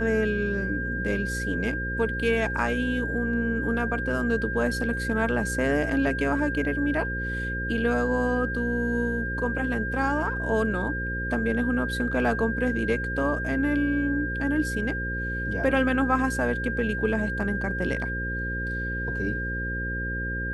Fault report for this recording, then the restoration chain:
buzz 60 Hz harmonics 9 -32 dBFS
whine 1.6 kHz -30 dBFS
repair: de-hum 60 Hz, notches 9; band-stop 1.6 kHz, Q 30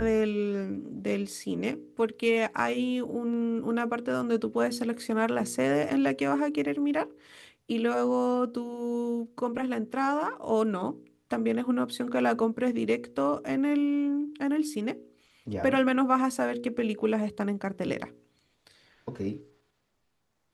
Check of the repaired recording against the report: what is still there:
nothing left

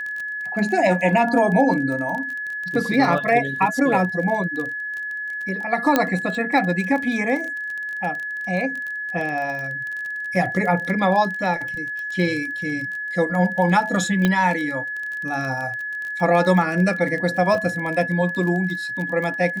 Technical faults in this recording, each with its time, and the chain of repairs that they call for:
crackle 23 per s -27 dBFS
whine 1.7 kHz -26 dBFS
5.96 s: pop -3 dBFS
14.25 s: pop -7 dBFS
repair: de-click; band-stop 1.7 kHz, Q 30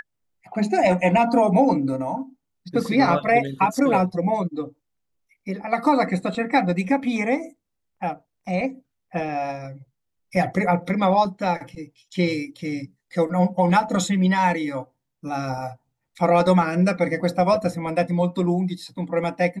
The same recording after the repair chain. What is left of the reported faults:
nothing left

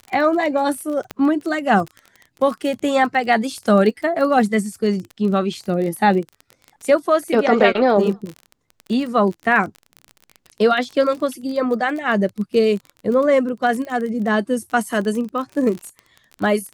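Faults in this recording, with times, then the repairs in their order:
crackle 27 per s -26 dBFS
1.11 s: pop -12 dBFS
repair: de-click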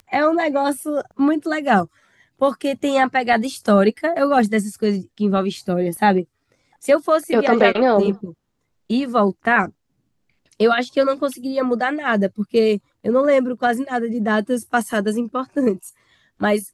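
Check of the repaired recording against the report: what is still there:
1.11 s: pop

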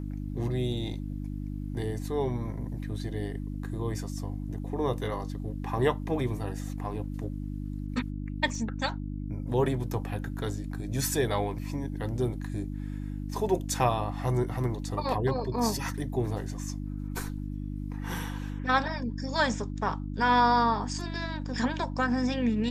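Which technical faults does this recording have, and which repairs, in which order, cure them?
hum 50 Hz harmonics 6 -35 dBFS
8.55 s: dropout 2.7 ms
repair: de-hum 50 Hz, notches 6; interpolate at 8.55 s, 2.7 ms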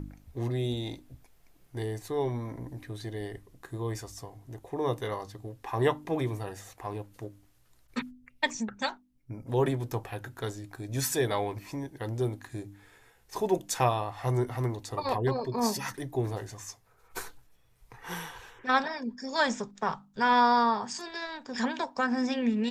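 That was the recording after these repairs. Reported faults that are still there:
nothing left

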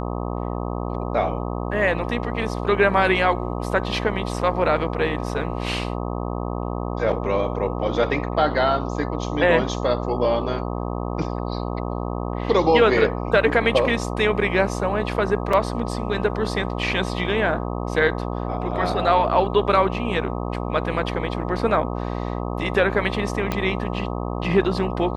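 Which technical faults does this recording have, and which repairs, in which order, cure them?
buzz 60 Hz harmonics 21 -27 dBFS
15.53 s: dropout 3.6 ms
23.52 s: pop -9 dBFS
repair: de-click; de-hum 60 Hz, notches 21; interpolate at 15.53 s, 3.6 ms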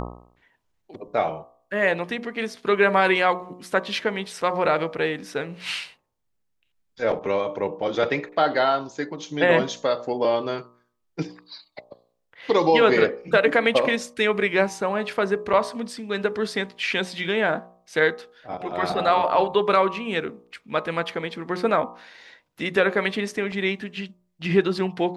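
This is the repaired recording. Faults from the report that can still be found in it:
23.52 s: pop

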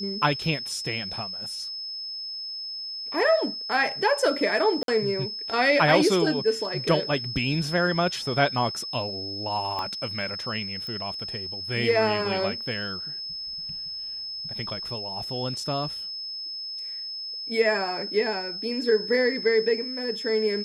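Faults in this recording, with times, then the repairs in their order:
whine 5.2 kHz -32 dBFS
4.83–4.88 s: dropout 52 ms
9.79 s: pop -18 dBFS
10.87 s: pop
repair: de-click; band-stop 5.2 kHz, Q 30; interpolate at 4.83 s, 52 ms

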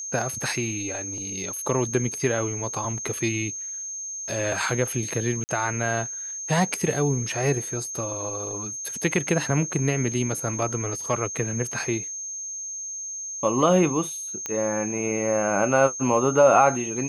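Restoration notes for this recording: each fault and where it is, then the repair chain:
whine 6.4 kHz -31 dBFS
5.44–5.49 s: dropout 49 ms
14.46 s: pop -14 dBFS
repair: de-click; band-stop 6.4 kHz, Q 30; interpolate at 5.44 s, 49 ms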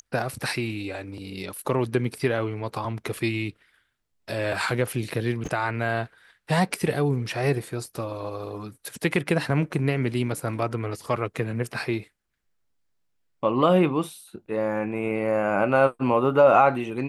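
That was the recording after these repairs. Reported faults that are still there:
nothing left

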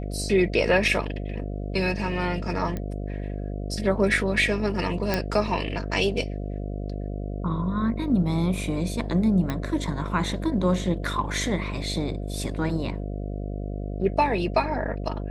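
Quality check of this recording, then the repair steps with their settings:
buzz 50 Hz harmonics 14 -31 dBFS
2.77 s: pop -18 dBFS
5.14 s: pop -9 dBFS
9.50 s: pop -14 dBFS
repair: de-click; de-hum 50 Hz, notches 14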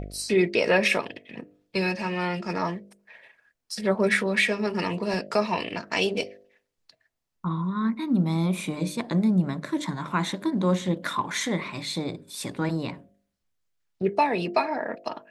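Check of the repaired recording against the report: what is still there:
2.77 s: pop

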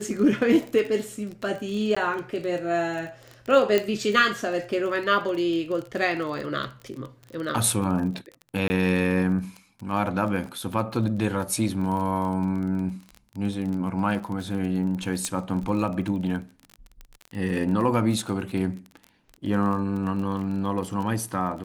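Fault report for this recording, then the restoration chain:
crackle 28 per s -31 dBFS
1.95–1.97 s: dropout 15 ms
3.78 s: pop -9 dBFS
8.68–8.70 s: dropout 20 ms
15.25 s: pop -13 dBFS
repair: de-click; interpolate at 1.95 s, 15 ms; interpolate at 8.68 s, 20 ms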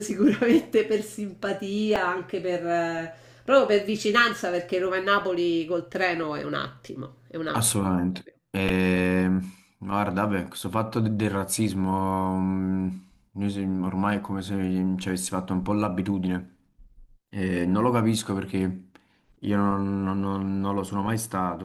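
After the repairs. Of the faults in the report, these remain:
nothing left

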